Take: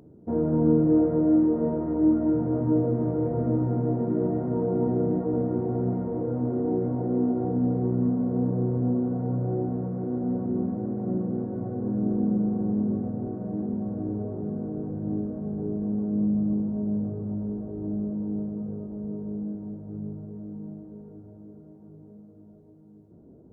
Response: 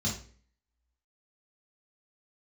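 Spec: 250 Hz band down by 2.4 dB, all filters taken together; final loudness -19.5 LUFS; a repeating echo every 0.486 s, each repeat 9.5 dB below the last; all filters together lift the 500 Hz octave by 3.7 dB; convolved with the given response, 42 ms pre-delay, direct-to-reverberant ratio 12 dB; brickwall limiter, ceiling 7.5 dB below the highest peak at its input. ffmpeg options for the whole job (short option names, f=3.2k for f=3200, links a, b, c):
-filter_complex "[0:a]equalizer=f=250:t=o:g=-5,equalizer=f=500:t=o:g=6,alimiter=limit=-19dB:level=0:latency=1,aecho=1:1:486|972|1458|1944:0.335|0.111|0.0365|0.012,asplit=2[a][b];[1:a]atrim=start_sample=2205,adelay=42[c];[b][c]afir=irnorm=-1:irlink=0,volume=-17dB[d];[a][d]amix=inputs=2:normalize=0,volume=8.5dB"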